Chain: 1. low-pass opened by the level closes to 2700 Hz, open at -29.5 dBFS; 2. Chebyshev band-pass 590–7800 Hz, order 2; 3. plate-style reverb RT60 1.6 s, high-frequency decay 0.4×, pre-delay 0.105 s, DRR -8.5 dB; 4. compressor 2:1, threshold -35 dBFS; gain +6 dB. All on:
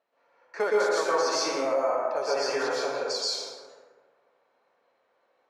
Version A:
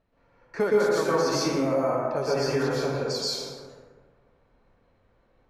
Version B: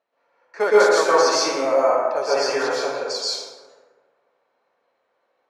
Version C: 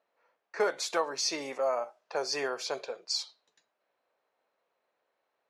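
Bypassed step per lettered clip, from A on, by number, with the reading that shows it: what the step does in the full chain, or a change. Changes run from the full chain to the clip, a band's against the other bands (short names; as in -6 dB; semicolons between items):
2, 250 Hz band +11.0 dB; 4, mean gain reduction 5.5 dB; 3, crest factor change +4.5 dB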